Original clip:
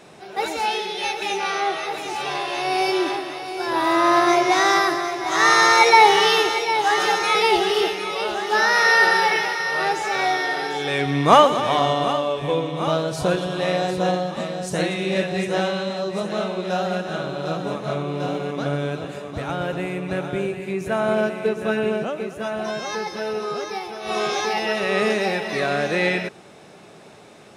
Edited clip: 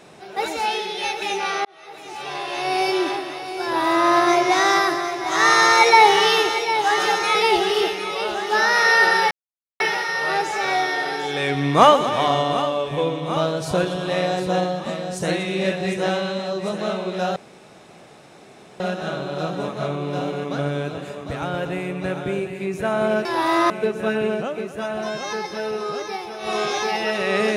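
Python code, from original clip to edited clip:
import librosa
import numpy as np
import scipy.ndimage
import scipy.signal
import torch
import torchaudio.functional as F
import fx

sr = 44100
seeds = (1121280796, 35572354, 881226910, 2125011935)

y = fx.edit(x, sr, fx.fade_in_span(start_s=1.65, length_s=1.03),
    fx.duplicate(start_s=3.63, length_s=0.45, to_s=21.32),
    fx.insert_silence(at_s=9.31, length_s=0.49),
    fx.insert_room_tone(at_s=16.87, length_s=1.44), tone=tone)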